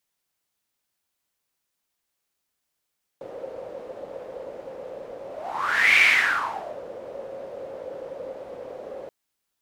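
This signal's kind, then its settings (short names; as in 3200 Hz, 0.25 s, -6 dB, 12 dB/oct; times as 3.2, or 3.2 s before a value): whoosh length 5.88 s, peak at 2.79, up 0.76 s, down 0.87 s, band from 530 Hz, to 2300 Hz, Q 8.6, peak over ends 20 dB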